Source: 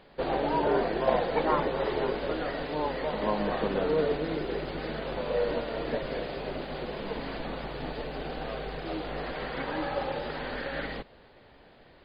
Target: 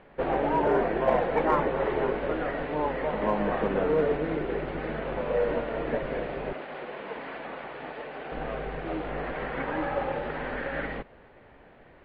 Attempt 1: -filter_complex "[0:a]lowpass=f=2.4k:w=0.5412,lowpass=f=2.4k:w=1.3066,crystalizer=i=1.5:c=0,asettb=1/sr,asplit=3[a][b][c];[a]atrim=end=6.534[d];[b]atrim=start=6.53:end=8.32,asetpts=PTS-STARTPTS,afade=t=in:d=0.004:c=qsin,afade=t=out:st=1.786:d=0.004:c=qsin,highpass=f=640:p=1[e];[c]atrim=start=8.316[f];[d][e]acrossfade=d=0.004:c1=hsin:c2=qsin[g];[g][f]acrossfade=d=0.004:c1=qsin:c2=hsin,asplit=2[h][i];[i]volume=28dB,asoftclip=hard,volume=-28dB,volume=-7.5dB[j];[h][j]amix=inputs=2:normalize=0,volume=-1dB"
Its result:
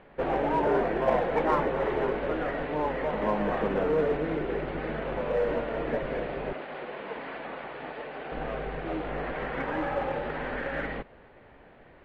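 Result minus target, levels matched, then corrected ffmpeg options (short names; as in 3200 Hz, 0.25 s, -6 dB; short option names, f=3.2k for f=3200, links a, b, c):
overloaded stage: distortion +10 dB
-filter_complex "[0:a]lowpass=f=2.4k:w=0.5412,lowpass=f=2.4k:w=1.3066,crystalizer=i=1.5:c=0,asettb=1/sr,asplit=3[a][b][c];[a]atrim=end=6.534[d];[b]atrim=start=6.53:end=8.32,asetpts=PTS-STARTPTS,afade=t=in:d=0.004:c=qsin,afade=t=out:st=1.786:d=0.004:c=qsin,highpass=f=640:p=1[e];[c]atrim=start=8.316[f];[d][e]acrossfade=d=0.004:c1=hsin:c2=qsin[g];[g][f]acrossfade=d=0.004:c1=qsin:c2=hsin,asplit=2[h][i];[i]volume=20.5dB,asoftclip=hard,volume=-20.5dB,volume=-7.5dB[j];[h][j]amix=inputs=2:normalize=0,volume=-1dB"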